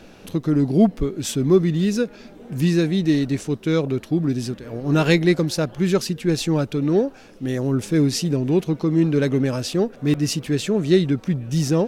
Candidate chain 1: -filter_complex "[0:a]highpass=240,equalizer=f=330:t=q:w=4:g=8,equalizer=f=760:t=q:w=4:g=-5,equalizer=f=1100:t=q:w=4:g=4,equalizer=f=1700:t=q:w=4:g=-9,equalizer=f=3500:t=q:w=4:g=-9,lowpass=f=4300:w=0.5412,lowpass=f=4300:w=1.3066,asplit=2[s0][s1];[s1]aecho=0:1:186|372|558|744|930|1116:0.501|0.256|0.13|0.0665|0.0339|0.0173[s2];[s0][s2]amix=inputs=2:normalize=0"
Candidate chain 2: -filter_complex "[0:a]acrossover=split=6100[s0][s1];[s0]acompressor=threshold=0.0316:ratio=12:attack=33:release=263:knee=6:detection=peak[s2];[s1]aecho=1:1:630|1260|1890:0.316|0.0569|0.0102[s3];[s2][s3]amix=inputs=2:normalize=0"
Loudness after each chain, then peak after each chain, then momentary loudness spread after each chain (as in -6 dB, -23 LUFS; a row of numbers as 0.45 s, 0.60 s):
-18.5 LUFS, -32.0 LUFS; -2.5 dBFS, -16.0 dBFS; 9 LU, 5 LU